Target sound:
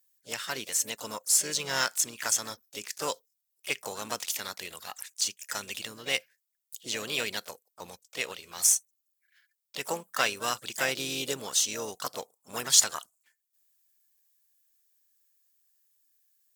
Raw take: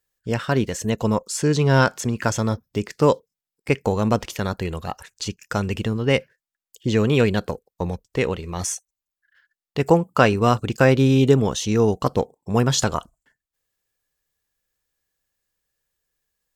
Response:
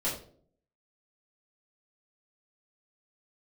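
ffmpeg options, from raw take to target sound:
-filter_complex "[0:a]aderivative,asplit=3[link_01][link_02][link_03];[link_02]asetrate=52444,aresample=44100,atempo=0.840896,volume=-12dB[link_04];[link_03]asetrate=58866,aresample=44100,atempo=0.749154,volume=-10dB[link_05];[link_01][link_04][link_05]amix=inputs=3:normalize=0,acrusher=bits=5:mode=log:mix=0:aa=0.000001,volume=5dB"

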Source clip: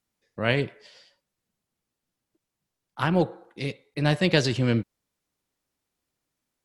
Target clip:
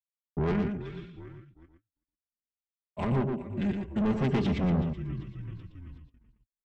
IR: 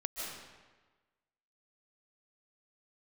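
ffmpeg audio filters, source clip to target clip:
-filter_complex "[0:a]acompressor=threshold=-23dB:ratio=3,tiltshelf=frequency=750:gain=9.5,aecho=1:1:3.6:0.93,asplit=2[link_01][link_02];[link_02]asplit=5[link_03][link_04][link_05][link_06][link_07];[link_03]adelay=380,afreqshift=-43,volume=-18.5dB[link_08];[link_04]adelay=760,afreqshift=-86,volume=-23.1dB[link_09];[link_05]adelay=1140,afreqshift=-129,volume=-27.7dB[link_10];[link_06]adelay=1520,afreqshift=-172,volume=-32.2dB[link_11];[link_07]adelay=1900,afreqshift=-215,volume=-36.8dB[link_12];[link_08][link_09][link_10][link_11][link_12]amix=inputs=5:normalize=0[link_13];[link_01][link_13]amix=inputs=2:normalize=0,agate=range=-54dB:threshold=-46dB:ratio=16:detection=peak,equalizer=frequency=3400:width=3.4:gain=5,asetrate=32097,aresample=44100,atempo=1.37395,asoftclip=type=tanh:threshold=-24dB,asplit=2[link_14][link_15];[link_15]aecho=0:1:118:0.501[link_16];[link_14][link_16]amix=inputs=2:normalize=0"

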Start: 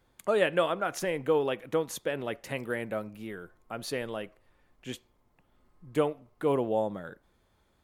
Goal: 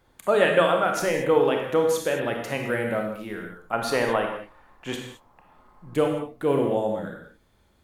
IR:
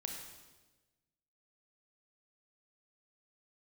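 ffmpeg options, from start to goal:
-filter_complex "[0:a]asetnsamples=nb_out_samples=441:pad=0,asendcmd='3.73 equalizer g 14;5.94 equalizer g -2',equalizer=frequency=1000:width=0.91:gain=3[link_01];[1:a]atrim=start_sample=2205,afade=type=out:start_time=0.28:duration=0.01,atrim=end_sample=12789[link_02];[link_01][link_02]afir=irnorm=-1:irlink=0,volume=7dB"

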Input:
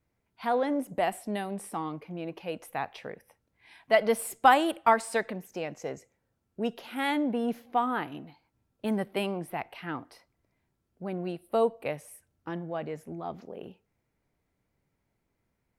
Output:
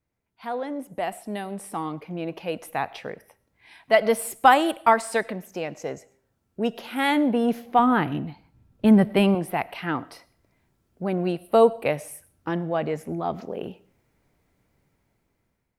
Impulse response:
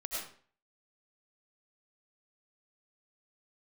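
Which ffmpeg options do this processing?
-filter_complex "[0:a]asplit=2[link_01][link_02];[1:a]atrim=start_sample=2205,highshelf=frequency=9500:gain=9[link_03];[link_02][link_03]afir=irnorm=-1:irlink=0,volume=-23.5dB[link_04];[link_01][link_04]amix=inputs=2:normalize=0,dynaudnorm=framelen=740:gausssize=5:maxgain=15.5dB,asettb=1/sr,asplit=3[link_05][link_06][link_07];[link_05]atrim=end=7.794[link_08];[link_06]atrim=start=7.79:end=9.35,asetpts=PTS-STARTPTS,afade=type=in:duration=0.004:curve=qsin,afade=type=out:start_time=1.556:duration=0.004:curve=qsin,bass=frequency=250:gain=10,treble=frequency=4000:gain=-4[link_09];[link_07]atrim=start=9.346[link_10];[link_08][link_09]acrossfade=duration=0.004:curve1=hsin:curve2=qsin[link_11];[link_11][link_10]acrossfade=duration=0.004:curve1=qsin:curve2=hsin,volume=-4dB"

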